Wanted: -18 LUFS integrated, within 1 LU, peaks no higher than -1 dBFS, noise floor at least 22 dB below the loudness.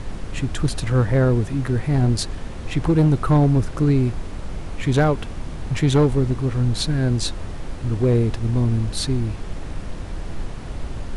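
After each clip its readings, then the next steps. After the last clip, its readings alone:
clipped 0.9%; flat tops at -10.5 dBFS; noise floor -32 dBFS; noise floor target -43 dBFS; loudness -21.0 LUFS; peak -10.5 dBFS; loudness target -18.0 LUFS
-> clip repair -10.5 dBFS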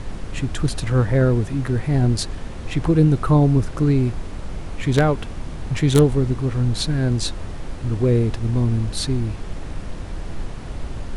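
clipped 0.0%; noise floor -32 dBFS; noise floor target -43 dBFS
-> noise print and reduce 11 dB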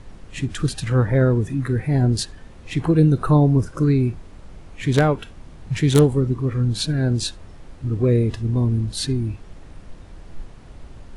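noise floor -42 dBFS; noise floor target -43 dBFS
-> noise print and reduce 6 dB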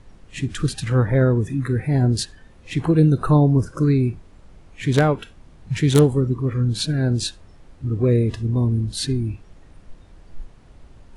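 noise floor -48 dBFS; loudness -20.5 LUFS; peak -1.5 dBFS; loudness target -18.0 LUFS
-> gain +2.5 dB; limiter -1 dBFS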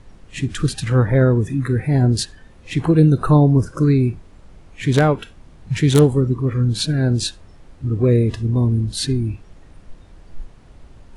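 loudness -18.0 LUFS; peak -1.0 dBFS; noise floor -45 dBFS

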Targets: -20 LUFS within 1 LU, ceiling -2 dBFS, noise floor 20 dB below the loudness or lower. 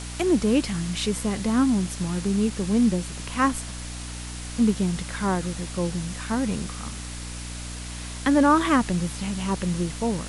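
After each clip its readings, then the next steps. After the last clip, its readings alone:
hum 60 Hz; harmonics up to 300 Hz; hum level -33 dBFS; noise floor -35 dBFS; noise floor target -45 dBFS; loudness -25.0 LUFS; peak -8.5 dBFS; loudness target -20.0 LUFS
-> de-hum 60 Hz, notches 5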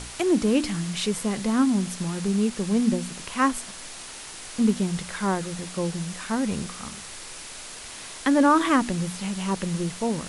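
hum none; noise floor -40 dBFS; noise floor target -45 dBFS
-> denoiser 6 dB, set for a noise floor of -40 dBFS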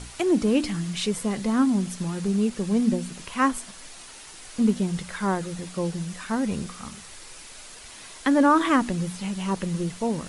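noise floor -44 dBFS; noise floor target -45 dBFS
-> denoiser 6 dB, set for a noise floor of -44 dBFS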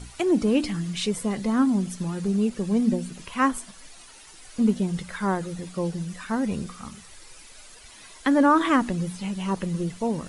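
noise floor -48 dBFS; loudness -25.0 LUFS; peak -9.5 dBFS; loudness target -20.0 LUFS
-> gain +5 dB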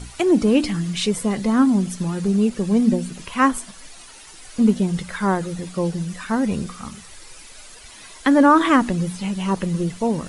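loudness -20.0 LUFS; peak -4.5 dBFS; noise floor -43 dBFS

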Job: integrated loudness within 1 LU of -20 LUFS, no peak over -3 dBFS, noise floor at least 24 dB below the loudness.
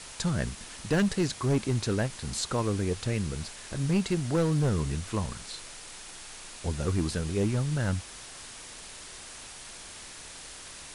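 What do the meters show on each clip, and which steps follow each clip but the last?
clipped 1.2%; flat tops at -20.0 dBFS; noise floor -45 dBFS; noise floor target -54 dBFS; loudness -30.0 LUFS; peak -20.0 dBFS; loudness target -20.0 LUFS
-> clip repair -20 dBFS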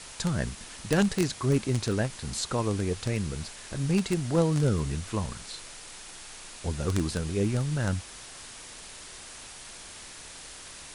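clipped 0.0%; noise floor -45 dBFS; noise floor target -53 dBFS
-> denoiser 8 dB, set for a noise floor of -45 dBFS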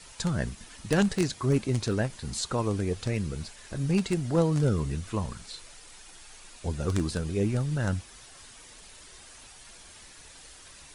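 noise floor -50 dBFS; noise floor target -53 dBFS
-> denoiser 6 dB, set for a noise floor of -50 dBFS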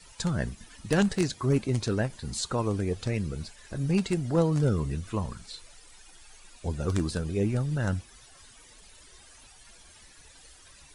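noise floor -54 dBFS; loudness -29.0 LUFS; peak -11.0 dBFS; loudness target -20.0 LUFS
-> gain +9 dB; limiter -3 dBFS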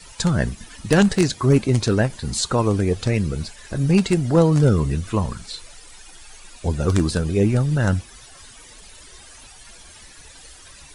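loudness -20.0 LUFS; peak -3.0 dBFS; noise floor -45 dBFS

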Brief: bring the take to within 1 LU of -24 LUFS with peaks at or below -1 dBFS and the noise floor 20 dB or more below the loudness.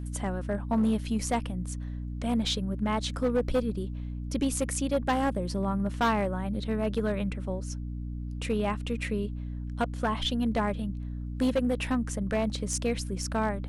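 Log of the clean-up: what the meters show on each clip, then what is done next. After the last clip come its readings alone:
clipped 1.1%; flat tops at -20.0 dBFS; hum 60 Hz; harmonics up to 300 Hz; hum level -33 dBFS; loudness -30.0 LUFS; peak -20.0 dBFS; loudness target -24.0 LUFS
-> clip repair -20 dBFS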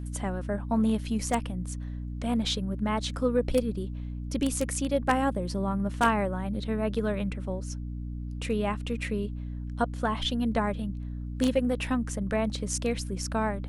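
clipped 0.0%; hum 60 Hz; harmonics up to 300 Hz; hum level -33 dBFS
-> notches 60/120/180/240/300 Hz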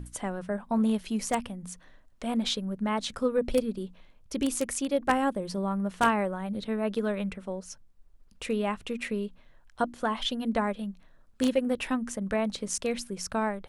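hum none; loudness -30.0 LUFS; peak -10.5 dBFS; loudness target -24.0 LUFS
-> gain +6 dB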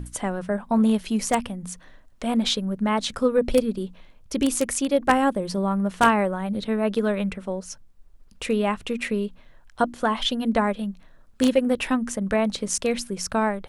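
loudness -24.0 LUFS; peak -4.5 dBFS; noise floor -52 dBFS

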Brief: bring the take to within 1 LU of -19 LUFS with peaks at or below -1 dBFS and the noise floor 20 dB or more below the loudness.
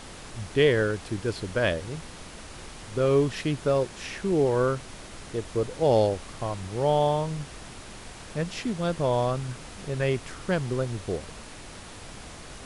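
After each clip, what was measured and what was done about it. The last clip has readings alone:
noise floor -43 dBFS; noise floor target -47 dBFS; loudness -27.0 LUFS; peak -10.0 dBFS; loudness target -19.0 LUFS
-> noise print and reduce 6 dB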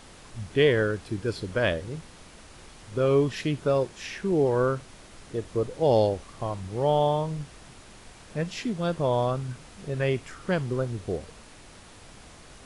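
noise floor -49 dBFS; loudness -27.0 LUFS; peak -10.0 dBFS; loudness target -19.0 LUFS
-> gain +8 dB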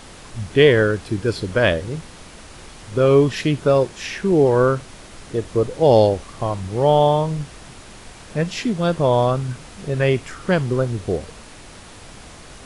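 loudness -19.0 LUFS; peak -2.0 dBFS; noise floor -41 dBFS

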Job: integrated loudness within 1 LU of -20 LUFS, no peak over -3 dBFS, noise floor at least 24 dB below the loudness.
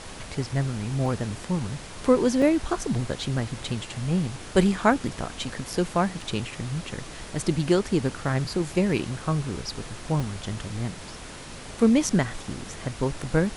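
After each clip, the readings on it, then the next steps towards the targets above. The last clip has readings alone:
dropouts 5; longest dropout 2.5 ms; noise floor -41 dBFS; noise floor target -51 dBFS; loudness -26.5 LUFS; peak -4.5 dBFS; loudness target -20.0 LUFS
-> interpolate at 1.06/2.42/6.21/10.2/13.22, 2.5 ms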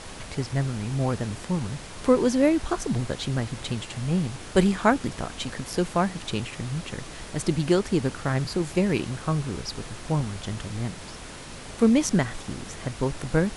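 dropouts 0; noise floor -41 dBFS; noise floor target -51 dBFS
-> noise print and reduce 10 dB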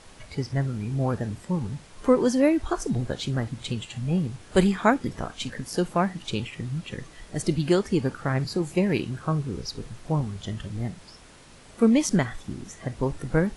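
noise floor -50 dBFS; noise floor target -51 dBFS
-> noise print and reduce 6 dB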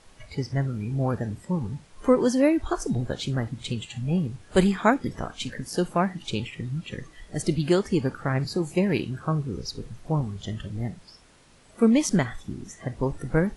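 noise floor -55 dBFS; loudness -26.5 LUFS; peak -4.5 dBFS; loudness target -20.0 LUFS
-> gain +6.5 dB; limiter -3 dBFS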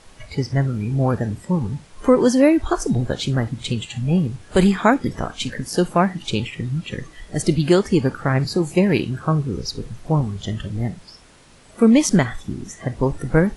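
loudness -20.5 LUFS; peak -3.0 dBFS; noise floor -48 dBFS

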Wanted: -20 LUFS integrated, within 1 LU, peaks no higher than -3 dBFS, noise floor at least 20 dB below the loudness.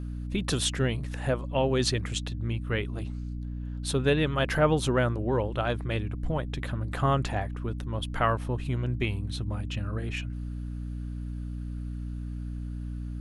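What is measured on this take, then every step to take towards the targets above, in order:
hum 60 Hz; harmonics up to 300 Hz; hum level -32 dBFS; loudness -30.0 LUFS; peak -9.5 dBFS; loudness target -20.0 LUFS
-> de-hum 60 Hz, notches 5; gain +10 dB; limiter -3 dBFS

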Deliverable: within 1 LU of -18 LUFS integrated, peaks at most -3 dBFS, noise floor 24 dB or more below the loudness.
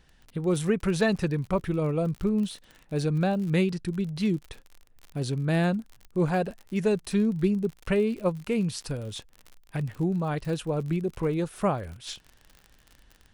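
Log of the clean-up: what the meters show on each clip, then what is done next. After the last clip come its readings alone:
ticks 48/s; loudness -28.0 LUFS; peak -11.0 dBFS; loudness target -18.0 LUFS
-> de-click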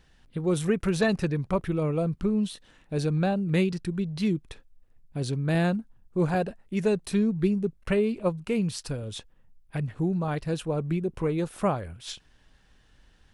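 ticks 0.075/s; loudness -28.0 LUFS; peak -11.0 dBFS; loudness target -18.0 LUFS
-> gain +10 dB; limiter -3 dBFS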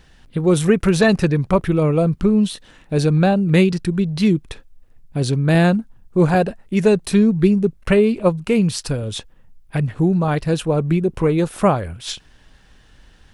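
loudness -18.0 LUFS; peak -3.0 dBFS; noise floor -51 dBFS

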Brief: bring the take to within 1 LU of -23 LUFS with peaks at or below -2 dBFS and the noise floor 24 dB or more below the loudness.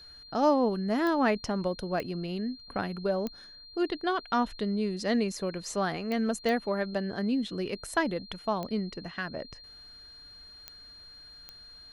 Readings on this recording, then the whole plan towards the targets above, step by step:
clicks 8; steady tone 4200 Hz; tone level -48 dBFS; loudness -30.5 LUFS; peak -14.0 dBFS; loudness target -23.0 LUFS
-> de-click; notch 4200 Hz, Q 30; gain +7.5 dB

